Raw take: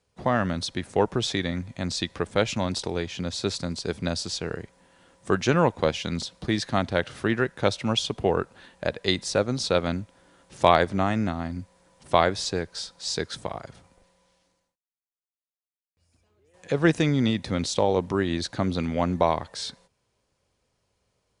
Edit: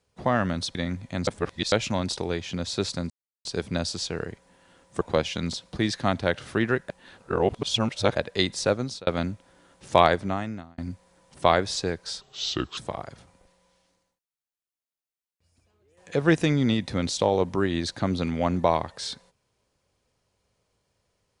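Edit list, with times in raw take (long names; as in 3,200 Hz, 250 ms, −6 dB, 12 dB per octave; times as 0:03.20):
0:00.75–0:01.41: remove
0:01.93–0:02.38: reverse
0:03.76: splice in silence 0.35 s
0:05.32–0:05.70: remove
0:07.58–0:08.84: reverse
0:09.44–0:09.76: fade out
0:10.75–0:11.47: fade out
0:12.90–0:13.34: play speed 78%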